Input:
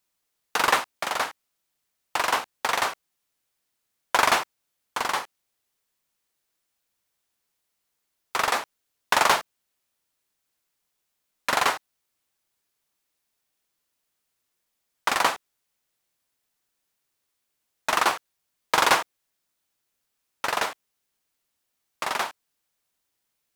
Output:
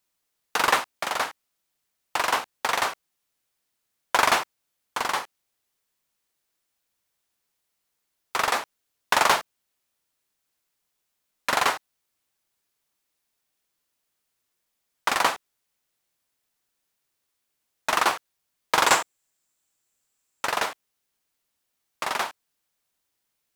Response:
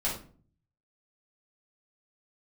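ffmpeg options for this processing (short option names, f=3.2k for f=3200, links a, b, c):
-filter_complex "[0:a]asettb=1/sr,asplit=3[a][b][c];[a]atrim=end=18.874[d];[b]atrim=start=18.87:end=20.45,asetpts=PTS-STARTPTS,afade=t=in:d=0.004:c=qsin,afade=t=out:st=1.576:d=0.004:c=qsin,equalizer=f=7.5k:w=4.7:g=12.5[e];[c]atrim=start=20.446[f];[d][e]acrossfade=d=0.004:c1=hsin:c2=qsin[g];[g][f]acrossfade=d=0.004:c1=qsin:c2=hsin"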